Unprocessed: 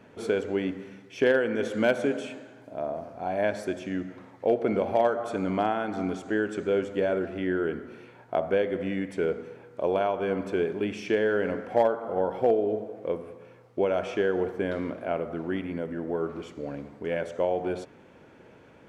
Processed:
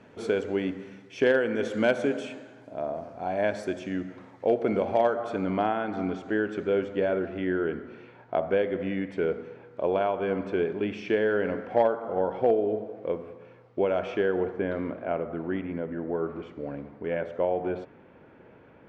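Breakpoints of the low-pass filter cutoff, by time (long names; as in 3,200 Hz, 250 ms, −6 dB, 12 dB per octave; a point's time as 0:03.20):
0:04.80 8,300 Hz
0:05.48 3,900 Hz
0:14.12 3,900 Hz
0:14.68 2,400 Hz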